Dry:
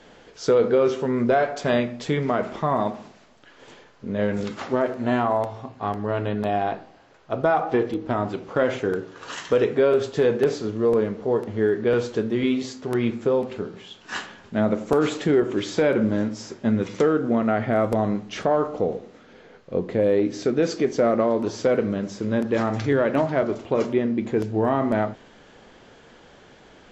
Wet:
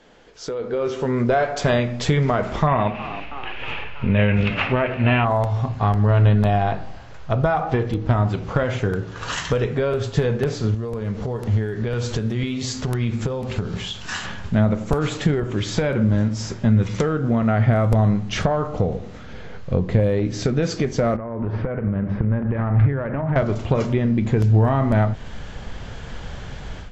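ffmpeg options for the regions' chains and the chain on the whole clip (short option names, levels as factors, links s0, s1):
-filter_complex "[0:a]asettb=1/sr,asplit=3[s0][s1][s2];[s0]atrim=end=2.674[s3];[s1]atrim=start=2.67:end=5.25,asetpts=PTS-STARTPTS,afade=t=in:d=0.004:c=qsin,afade=t=out:st=2.576:d=0.004:c=qsin,lowpass=f=2600:t=q:w=7.7,asplit=7[s4][s5][s6][s7][s8][s9][s10];[s5]adelay=321,afreqshift=72,volume=0.112[s11];[s6]adelay=642,afreqshift=144,volume=0.0692[s12];[s7]adelay=963,afreqshift=216,volume=0.0432[s13];[s8]adelay=1284,afreqshift=288,volume=0.0266[s14];[s9]adelay=1605,afreqshift=360,volume=0.0166[s15];[s10]adelay=1926,afreqshift=432,volume=0.0102[s16];[s4][s11][s12][s13][s14][s15][s16]amix=inputs=7:normalize=0,atrim=end_sample=113778[s17];[s2]atrim=start=5.246[s18];[s3][s17]acrossfade=d=0.004:c1=hsin:c2=qsin[s19];[s19][s18]acrossfade=d=0.004:c1=qsin:c2=hsin,asettb=1/sr,asplit=3[s20][s21][s22];[s20]atrim=end=10.744[s23];[s21]atrim=start=10.74:end=14.25,asetpts=PTS-STARTPTS,afade=t=in:d=0.004:c=qsin,afade=t=out:st=3.506:d=0.004:c=qsin,highshelf=f=3800:g=7,acompressor=threshold=0.0141:ratio=3:attack=3.2:release=140:knee=1:detection=peak[s24];[s22]atrim=start=14.246[s25];[s23][s24]acrossfade=d=0.004:c1=hsin:c2=qsin[s26];[s26][s25]acrossfade=d=0.004:c1=qsin:c2=hsin,asettb=1/sr,asplit=3[s27][s28][s29];[s27]atrim=end=21.164[s30];[s28]atrim=start=21.16:end=23.36,asetpts=PTS-STARTPTS,afade=t=in:d=0.004:c=qsin,afade=t=out:st=2.196:d=0.004:c=qsin,lowpass=f=2100:w=0.5412,lowpass=f=2100:w=1.3066,acompressor=threshold=0.0316:ratio=8:attack=3.2:release=140:knee=1:detection=peak[s31];[s29]atrim=start=23.356[s32];[s30][s31]acrossfade=d=0.004:c1=hsin:c2=qsin[s33];[s33][s32]acrossfade=d=0.004:c1=qsin:c2=hsin,acompressor=threshold=0.0251:ratio=2,asubboost=boost=10:cutoff=100,dynaudnorm=f=570:g=3:m=5.62,volume=0.708"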